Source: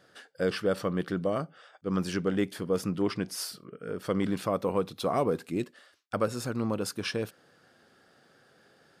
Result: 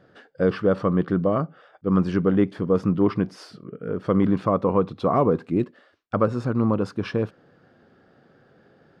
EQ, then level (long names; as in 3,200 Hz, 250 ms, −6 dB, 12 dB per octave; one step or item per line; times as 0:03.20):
low-shelf EQ 500 Hz +7 dB
dynamic equaliser 1,100 Hz, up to +7 dB, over −47 dBFS, Q 2.4
head-to-tape spacing loss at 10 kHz 25 dB
+4.0 dB